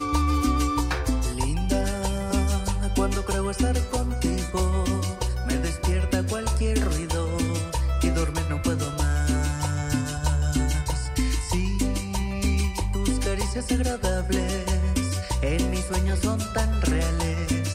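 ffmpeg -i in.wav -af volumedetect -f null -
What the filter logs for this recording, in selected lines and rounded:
mean_volume: -24.0 dB
max_volume: -10.4 dB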